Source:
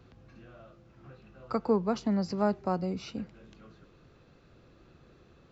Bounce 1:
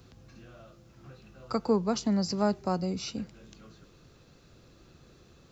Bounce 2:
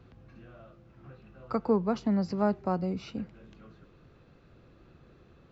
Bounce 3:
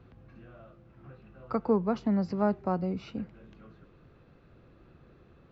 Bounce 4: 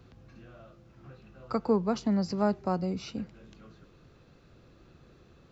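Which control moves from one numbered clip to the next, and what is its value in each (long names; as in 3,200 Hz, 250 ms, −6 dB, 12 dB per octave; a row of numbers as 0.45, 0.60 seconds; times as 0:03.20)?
bass and treble, treble: +14, −6, −14, +3 decibels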